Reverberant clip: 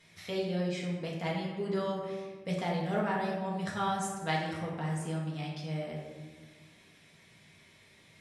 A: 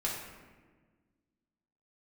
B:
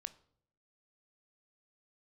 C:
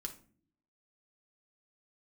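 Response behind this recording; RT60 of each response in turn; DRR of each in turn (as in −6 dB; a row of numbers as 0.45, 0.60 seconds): A; 1.4 s, 0.65 s, non-exponential decay; −5.0, 12.5, 3.0 decibels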